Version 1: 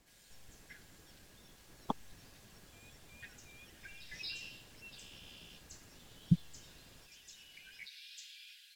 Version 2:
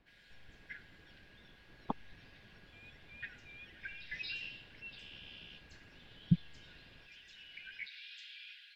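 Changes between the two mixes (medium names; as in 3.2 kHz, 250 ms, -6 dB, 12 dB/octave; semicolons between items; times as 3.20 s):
background +11.0 dB; master: add distance through air 390 m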